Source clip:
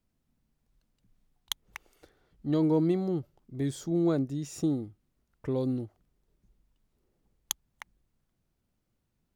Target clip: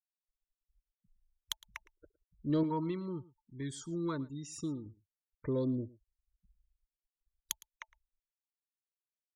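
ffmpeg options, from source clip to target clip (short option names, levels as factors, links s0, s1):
-filter_complex "[0:a]asettb=1/sr,asplit=3[s0][s1][s2];[s0]atrim=end=2.634[s3];[s1]atrim=start=2.63:end=4.86,asetpts=PTS-STARTPTS,afade=t=in:d=0.004:c=qsin,afade=t=out:st=2.226:d=0.004:c=qsin,lowshelf=f=730:t=q:w=3:g=-6[s4];[s2]atrim=start=4.856[s5];[s3][s4]acrossfade=d=0.004:c1=hsin:c2=qsin[s6];[s6][s5]acrossfade=d=0.004:c1=qsin:c2=hsin,afftfilt=real='re*gte(hypot(re,im),0.00398)':imag='im*gte(hypot(re,im),0.00398)':win_size=1024:overlap=0.75,asoftclip=type=tanh:threshold=0.15,asuperstop=centerf=760:order=20:qfactor=3.4,aecho=1:1:111:0.0891,volume=0.75"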